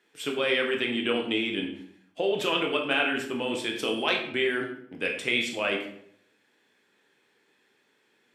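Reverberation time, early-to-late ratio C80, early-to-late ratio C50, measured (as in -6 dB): 0.70 s, 9.5 dB, 6.5 dB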